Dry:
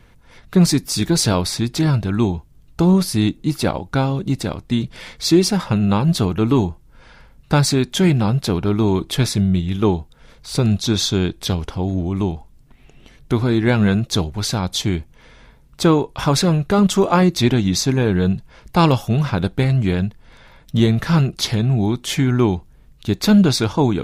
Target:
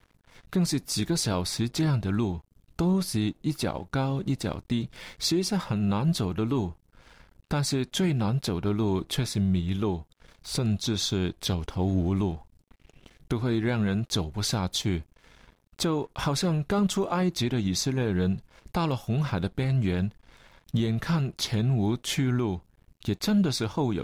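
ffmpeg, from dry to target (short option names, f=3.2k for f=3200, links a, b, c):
-af "aeval=exprs='sgn(val(0))*max(abs(val(0))-0.00398,0)':c=same,alimiter=limit=-13dB:level=0:latency=1:release=447,volume=-3.5dB"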